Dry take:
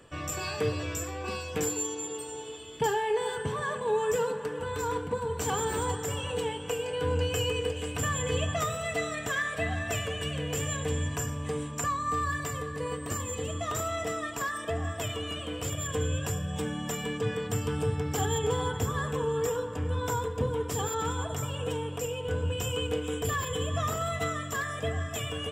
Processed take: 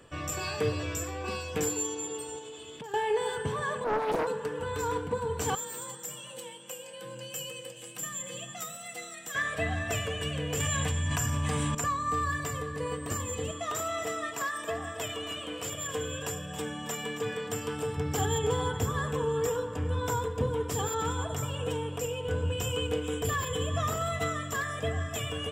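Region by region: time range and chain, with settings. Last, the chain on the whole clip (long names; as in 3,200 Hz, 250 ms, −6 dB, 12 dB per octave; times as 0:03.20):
0:02.38–0:02.94: high-pass filter 98 Hz + downward compressor 10 to 1, threshold −39 dBFS + highs frequency-modulated by the lows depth 0.19 ms
0:03.84–0:04.27: low-pass filter 2,000 Hz 6 dB per octave + highs frequency-modulated by the lows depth 0.93 ms
0:05.55–0:09.35: high-pass filter 110 Hz + first-order pre-emphasis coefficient 0.8 + frequency shifter +40 Hz
0:10.60–0:11.75: parametric band 420 Hz −13.5 dB 0.68 octaves + mains-hum notches 50/100/150/200/250/300/350/400 Hz + envelope flattener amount 100%
0:13.51–0:17.97: high-pass filter 330 Hz 6 dB per octave + single-tap delay 273 ms −12.5 dB
whole clip: no processing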